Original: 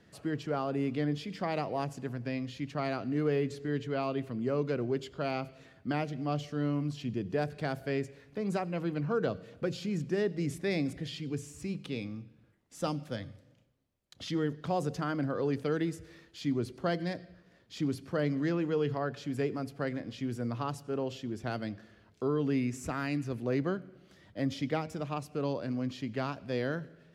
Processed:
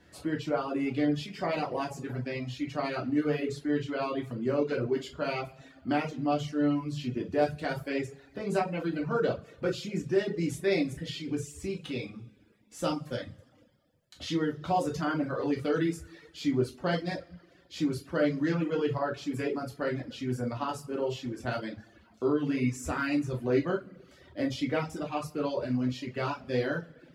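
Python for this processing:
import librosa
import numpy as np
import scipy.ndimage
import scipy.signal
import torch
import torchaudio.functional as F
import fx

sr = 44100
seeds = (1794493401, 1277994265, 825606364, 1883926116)

y = fx.rev_double_slope(x, sr, seeds[0], early_s=0.37, late_s=1.6, knee_db=-16, drr_db=-3.0)
y = fx.dereverb_blind(y, sr, rt60_s=0.69)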